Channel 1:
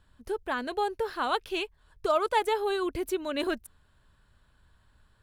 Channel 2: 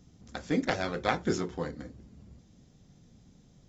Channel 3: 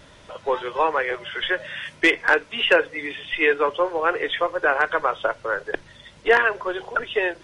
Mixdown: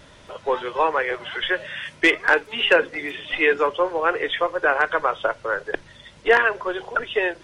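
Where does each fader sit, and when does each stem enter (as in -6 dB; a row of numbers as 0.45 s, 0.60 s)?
-17.0 dB, -16.5 dB, +0.5 dB; 0.00 s, 2.25 s, 0.00 s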